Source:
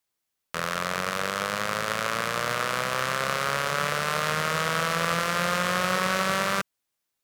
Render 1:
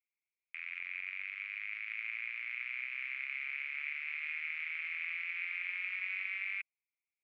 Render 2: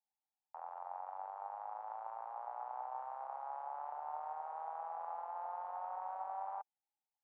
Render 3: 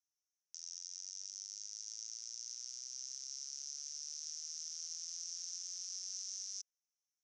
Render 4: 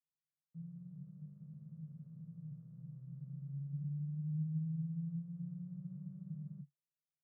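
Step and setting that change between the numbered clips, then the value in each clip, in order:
Butterworth band-pass, frequency: 2.3 kHz, 820 Hz, 5.9 kHz, 150 Hz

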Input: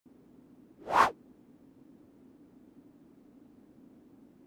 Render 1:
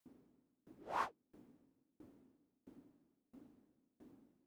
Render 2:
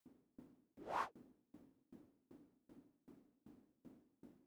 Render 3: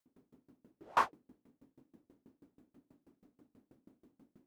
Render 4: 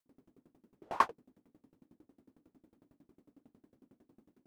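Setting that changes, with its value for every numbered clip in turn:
sawtooth tremolo in dB, rate: 1.5 Hz, 2.6 Hz, 6.2 Hz, 11 Hz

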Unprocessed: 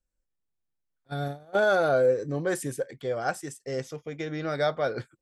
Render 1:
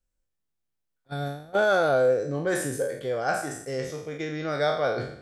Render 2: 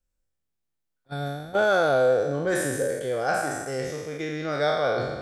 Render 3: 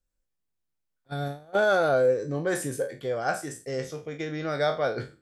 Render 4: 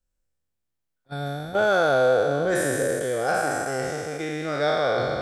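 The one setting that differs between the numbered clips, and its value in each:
spectral sustain, RT60: 0.67 s, 1.43 s, 0.32 s, 3.02 s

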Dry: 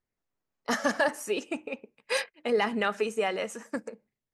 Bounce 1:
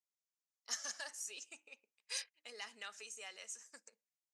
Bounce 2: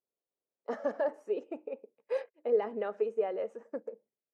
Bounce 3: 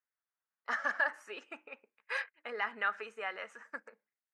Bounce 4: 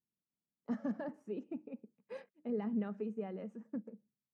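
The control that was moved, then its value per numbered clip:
band-pass filter, frequency: 6.5 kHz, 490 Hz, 1.5 kHz, 190 Hz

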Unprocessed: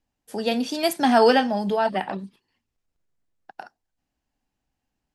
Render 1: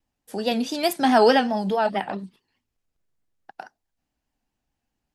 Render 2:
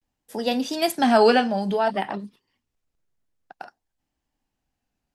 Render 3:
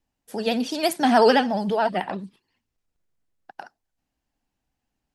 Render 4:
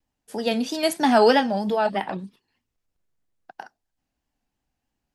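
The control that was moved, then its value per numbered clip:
vibrato, rate: 4.7 Hz, 0.54 Hz, 14 Hz, 3.1 Hz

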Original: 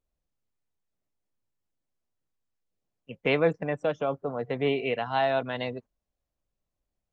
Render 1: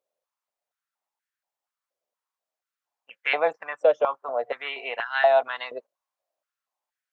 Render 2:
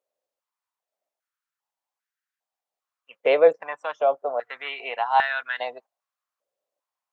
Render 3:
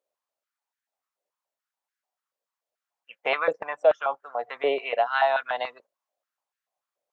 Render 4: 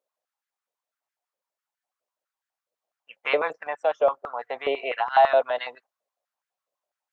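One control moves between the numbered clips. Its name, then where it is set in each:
step-sequenced high-pass, rate: 4.2 Hz, 2.5 Hz, 6.9 Hz, 12 Hz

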